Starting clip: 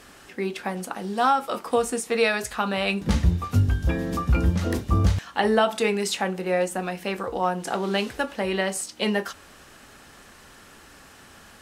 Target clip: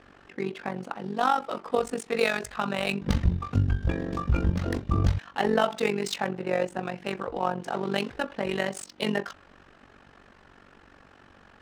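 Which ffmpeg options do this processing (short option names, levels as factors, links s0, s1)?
-af "tremolo=f=47:d=0.788,adynamicsmooth=sensitivity=7.5:basefreq=2500"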